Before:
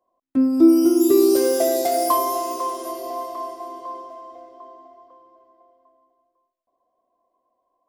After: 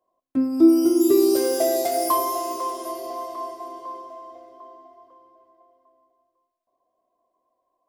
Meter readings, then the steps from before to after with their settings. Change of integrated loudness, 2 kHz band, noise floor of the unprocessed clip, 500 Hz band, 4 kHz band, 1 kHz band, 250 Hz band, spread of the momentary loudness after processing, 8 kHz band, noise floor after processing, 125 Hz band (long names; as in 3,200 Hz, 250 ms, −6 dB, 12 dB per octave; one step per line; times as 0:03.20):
−2.0 dB, −1.5 dB, −76 dBFS, −2.0 dB, −1.0 dB, −2.0 dB, −2.0 dB, 19 LU, −1.5 dB, −78 dBFS, can't be measured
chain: coupled-rooms reverb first 0.33 s, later 3.6 s, from −22 dB, DRR 10.5 dB
level −2 dB